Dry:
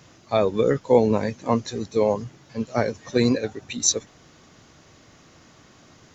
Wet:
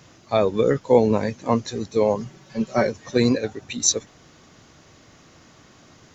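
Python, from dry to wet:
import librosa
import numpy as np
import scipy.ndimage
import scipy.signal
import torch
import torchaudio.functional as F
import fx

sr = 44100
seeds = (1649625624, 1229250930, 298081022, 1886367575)

y = fx.comb(x, sr, ms=5.3, depth=0.73, at=(2.18, 2.87))
y = F.gain(torch.from_numpy(y), 1.0).numpy()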